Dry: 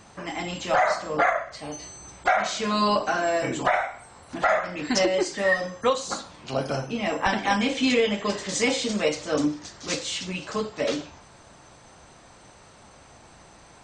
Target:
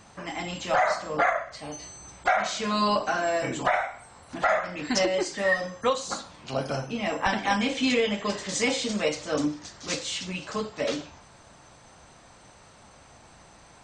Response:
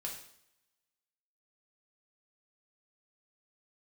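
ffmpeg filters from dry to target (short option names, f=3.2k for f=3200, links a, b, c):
-af "equalizer=f=370:w=2:g=-2.5,volume=-1.5dB"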